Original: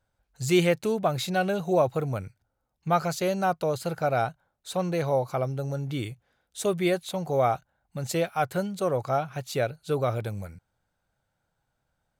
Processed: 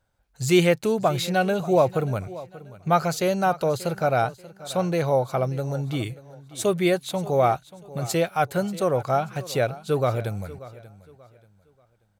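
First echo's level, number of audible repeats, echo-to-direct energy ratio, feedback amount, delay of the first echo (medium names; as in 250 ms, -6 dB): -18.0 dB, 2, -17.5 dB, 31%, 585 ms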